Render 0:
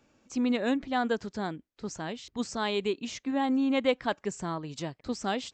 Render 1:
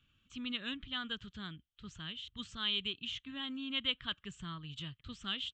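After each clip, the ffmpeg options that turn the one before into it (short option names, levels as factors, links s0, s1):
-af "firequalizer=gain_entry='entry(100,0);entry(240,-16);entry(510,-26);entry(790,-28);entry(1200,-8);entry(2200,-10);entry(3100,7);entry(4900,-19);entry(8500,-15)':delay=0.05:min_phase=1,volume=1.12"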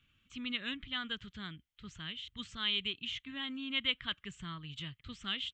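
-af "equalizer=f=2100:w=3.5:g=8"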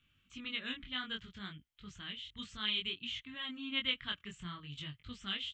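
-af "flanger=delay=20:depth=3.9:speed=0.6,volume=1.19"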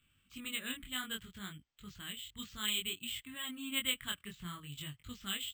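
-af "acrusher=samples=4:mix=1:aa=0.000001"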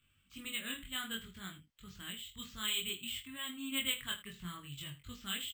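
-af "aecho=1:1:22|79:0.531|0.188,volume=0.841"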